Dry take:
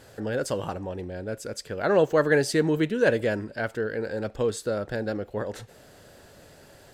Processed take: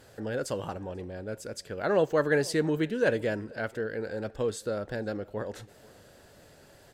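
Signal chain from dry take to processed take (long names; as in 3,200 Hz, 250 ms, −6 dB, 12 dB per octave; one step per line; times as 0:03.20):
tape wow and flutter 23 cents
slap from a distant wall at 84 metres, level −23 dB
level −4 dB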